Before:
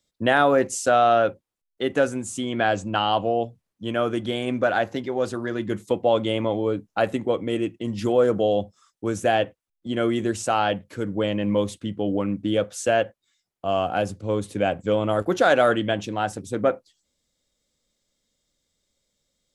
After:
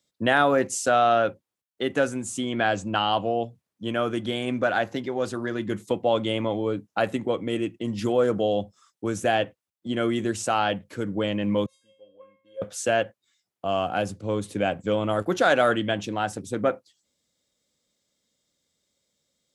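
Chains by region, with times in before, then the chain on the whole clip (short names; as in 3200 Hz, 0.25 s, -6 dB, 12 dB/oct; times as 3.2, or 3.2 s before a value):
11.66–12.62 HPF 220 Hz 6 dB/oct + high shelf 4200 Hz -7.5 dB + resonator 540 Hz, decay 0.5 s, mix 100%
whole clip: HPF 93 Hz; dynamic EQ 500 Hz, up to -3 dB, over -28 dBFS, Q 0.77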